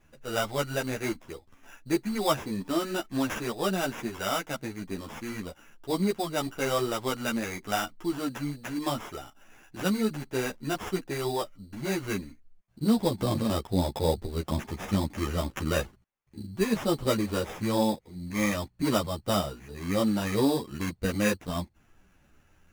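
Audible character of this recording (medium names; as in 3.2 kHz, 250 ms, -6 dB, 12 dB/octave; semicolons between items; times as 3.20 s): aliases and images of a low sample rate 4.3 kHz, jitter 0%; a shimmering, thickened sound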